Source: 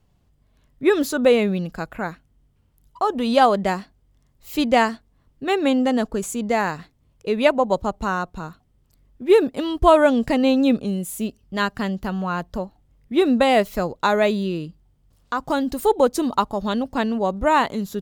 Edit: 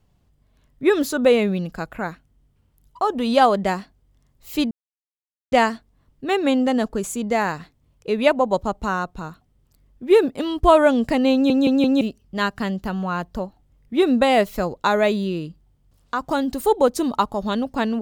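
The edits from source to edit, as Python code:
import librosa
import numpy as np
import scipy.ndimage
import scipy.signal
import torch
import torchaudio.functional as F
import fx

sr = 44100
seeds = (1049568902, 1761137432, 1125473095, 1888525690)

y = fx.edit(x, sr, fx.insert_silence(at_s=4.71, length_s=0.81),
    fx.stutter_over(start_s=10.52, slice_s=0.17, count=4), tone=tone)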